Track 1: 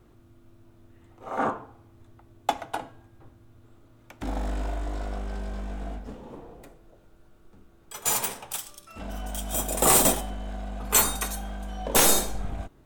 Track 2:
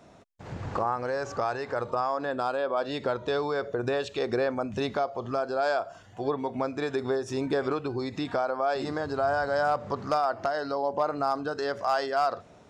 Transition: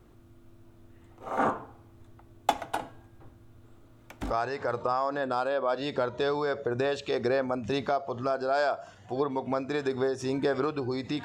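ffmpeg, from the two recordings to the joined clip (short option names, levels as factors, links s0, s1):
-filter_complex "[0:a]apad=whole_dur=11.24,atrim=end=11.24,atrim=end=4.34,asetpts=PTS-STARTPTS[s0];[1:a]atrim=start=1.32:end=8.32,asetpts=PTS-STARTPTS[s1];[s0][s1]acrossfade=d=0.1:c1=tri:c2=tri"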